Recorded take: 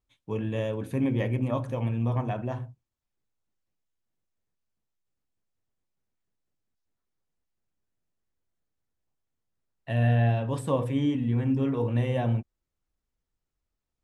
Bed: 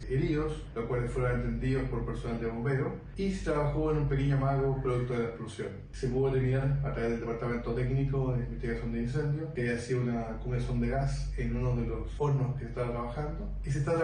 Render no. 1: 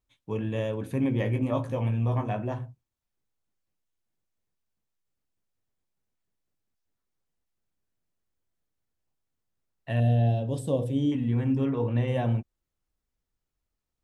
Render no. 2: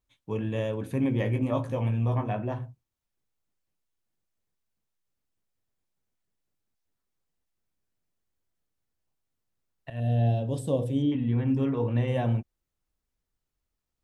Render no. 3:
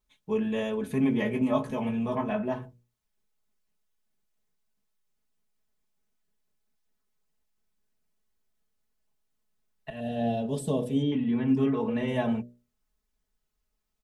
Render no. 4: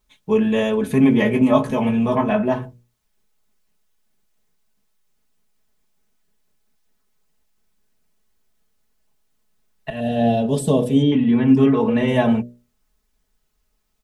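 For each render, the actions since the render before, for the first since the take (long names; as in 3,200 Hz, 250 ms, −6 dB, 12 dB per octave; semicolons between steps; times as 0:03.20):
0:01.24–0:02.54: double-tracking delay 19 ms −6 dB; 0:10.00–0:11.12: flat-topped bell 1,500 Hz −14.5 dB; 0:11.65–0:12.08: high-frequency loss of the air 77 metres
0:02.14–0:02.61: parametric band 7,300 Hz −13 dB → −6 dB 0.76 octaves; 0:09.90–0:10.35: fade in equal-power, from −17.5 dB; 0:11.02–0:11.48: Chebyshev low-pass filter 4,000 Hz, order 3
mains-hum notches 60/120/180/240/300/360/420/480/540/600 Hz; comb filter 4.7 ms, depth 93%
level +10.5 dB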